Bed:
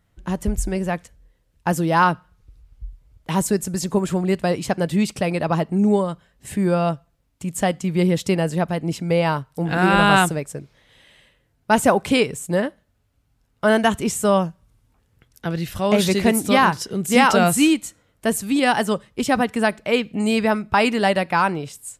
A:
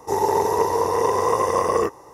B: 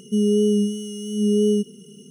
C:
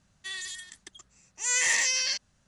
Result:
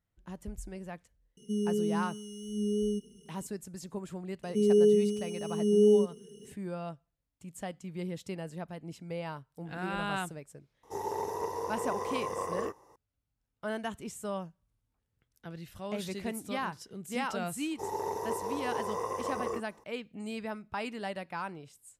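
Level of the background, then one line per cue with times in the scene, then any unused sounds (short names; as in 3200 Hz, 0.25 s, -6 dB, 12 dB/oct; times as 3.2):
bed -19 dB
1.37 add B -12 dB
4.43 add B -9.5 dB + band shelf 660 Hz +9 dB
10.83 add A -15 dB
17.71 add A -15 dB
not used: C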